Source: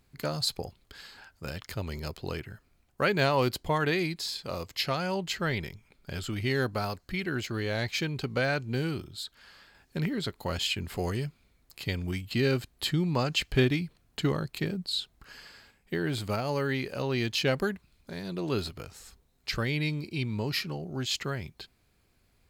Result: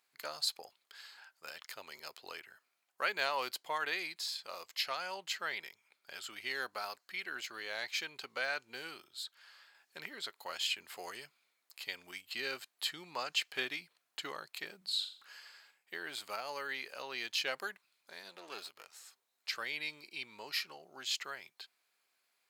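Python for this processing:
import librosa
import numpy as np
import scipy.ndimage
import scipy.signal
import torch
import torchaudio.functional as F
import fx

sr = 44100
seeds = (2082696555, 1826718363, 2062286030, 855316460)

y = fx.halfwave_gain(x, sr, db=-12.0, at=(18.29, 18.93))
y = scipy.signal.sosfilt(scipy.signal.butter(2, 860.0, 'highpass', fs=sr, output='sos'), y)
y = fx.room_flutter(y, sr, wall_m=7.3, rt60_s=0.41, at=(14.77, 15.39))
y = y * librosa.db_to_amplitude(-4.5)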